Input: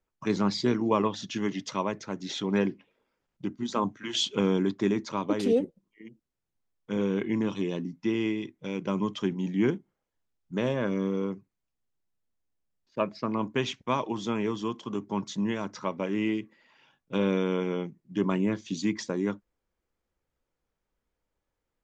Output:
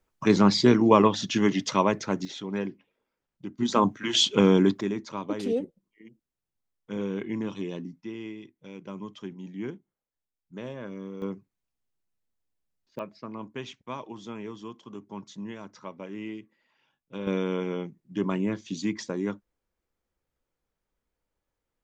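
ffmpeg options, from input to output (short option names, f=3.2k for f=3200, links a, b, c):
-af "asetnsamples=n=441:p=0,asendcmd='2.25 volume volume -5dB;3.58 volume volume 6dB;4.81 volume volume -3.5dB;8.01 volume volume -10dB;11.22 volume volume -1dB;12.99 volume volume -9dB;17.27 volume volume -1dB',volume=7dB"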